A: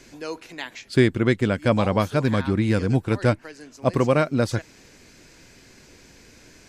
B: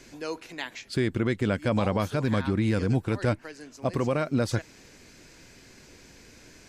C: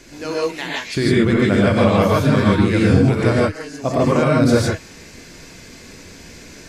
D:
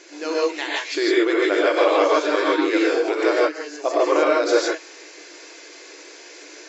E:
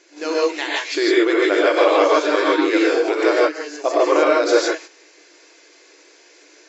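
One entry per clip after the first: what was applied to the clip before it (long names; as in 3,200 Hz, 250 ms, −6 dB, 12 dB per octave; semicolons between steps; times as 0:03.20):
brickwall limiter −14.5 dBFS, peak gain reduction 8.5 dB; level −1.5 dB
reverb whose tail is shaped and stops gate 180 ms rising, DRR −5 dB; level +5.5 dB
brick-wall band-pass 280–7,700 Hz
noise gate −36 dBFS, range −10 dB; level +2.5 dB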